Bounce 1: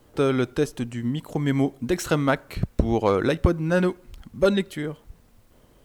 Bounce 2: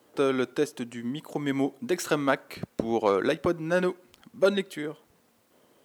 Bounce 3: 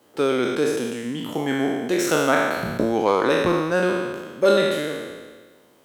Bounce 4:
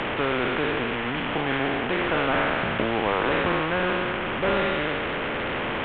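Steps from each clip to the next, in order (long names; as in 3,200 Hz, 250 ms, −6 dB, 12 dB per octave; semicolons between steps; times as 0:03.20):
high-pass filter 250 Hz 12 dB per octave; level −2 dB
peak hold with a decay on every bin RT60 1.49 s; level +2 dB
linear delta modulator 16 kbit/s, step −25 dBFS; low-pass filter 2,400 Hz 12 dB per octave; every bin compressed towards the loudest bin 2 to 1; level −2 dB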